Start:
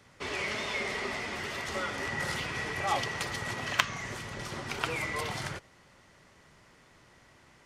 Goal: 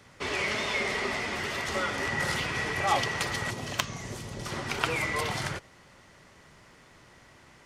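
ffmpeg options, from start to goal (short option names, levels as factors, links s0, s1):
-filter_complex "[0:a]asettb=1/sr,asplit=3[s0][s1][s2];[s0]atrim=end=3.504[s3];[s1]atrim=start=3.5:end=4.46,asetpts=PTS-STARTPTS,afade=t=in:d=0.004:c=qsin,afade=t=out:st=0.956:d=0.004:c=qsin,equalizer=f=1700:t=o:w=2.1:g=-10.5[s4];[s2]atrim=start=4.456[s5];[s3][s4]acrossfade=d=0.004:c1=hsin:c2=qsin[s6];[s6][s5]acrossfade=d=0.004:c1=qsin:c2=hsin,volume=1.58"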